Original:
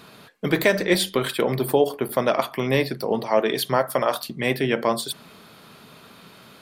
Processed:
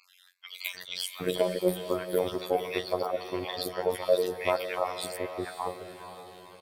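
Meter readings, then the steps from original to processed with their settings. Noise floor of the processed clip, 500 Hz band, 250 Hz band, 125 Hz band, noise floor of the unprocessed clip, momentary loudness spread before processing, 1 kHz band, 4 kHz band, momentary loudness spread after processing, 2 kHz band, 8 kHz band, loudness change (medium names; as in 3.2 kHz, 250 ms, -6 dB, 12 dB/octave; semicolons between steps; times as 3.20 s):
-60 dBFS, -6.5 dB, -11.0 dB, -13.5 dB, -49 dBFS, 5 LU, -7.5 dB, -7.5 dB, 16 LU, -11.5 dB, -8.5 dB, -8.0 dB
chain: random holes in the spectrogram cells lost 36%; ten-band graphic EQ 250 Hz -8 dB, 500 Hz +7 dB, 4 kHz +4 dB; in parallel at -9 dB: saturation -22 dBFS, distortion -6 dB; on the sum: three bands offset in time mids, highs, lows 40/750 ms, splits 1.6/5.7 kHz; robot voice 91 Hz; on a send: echo that smears into a reverb 500 ms, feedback 45%, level -10.5 dB; on the sum: trim -6.5 dB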